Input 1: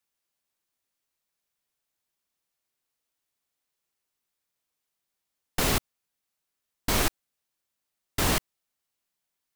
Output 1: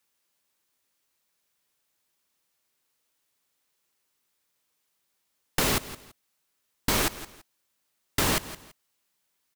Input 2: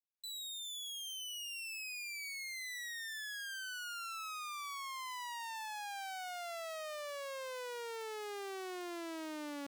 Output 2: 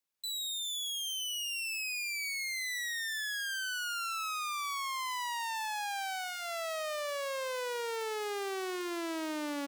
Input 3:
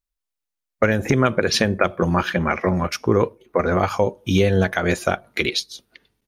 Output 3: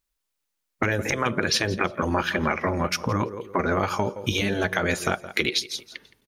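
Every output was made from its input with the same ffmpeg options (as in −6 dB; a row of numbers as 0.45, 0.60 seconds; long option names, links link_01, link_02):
-filter_complex "[0:a]lowshelf=frequency=85:gain=-7,bandreject=frequency=710:width=12,asplit=2[link_01][link_02];[link_02]aecho=0:1:167|334:0.1|0.021[link_03];[link_01][link_03]amix=inputs=2:normalize=0,afftfilt=real='re*lt(hypot(re,im),0.631)':imag='im*lt(hypot(re,im),0.631)':win_size=1024:overlap=0.75,acompressor=threshold=-32dB:ratio=2.5,volume=7.5dB"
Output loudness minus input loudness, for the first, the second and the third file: +0.5, +7.5, −4.5 LU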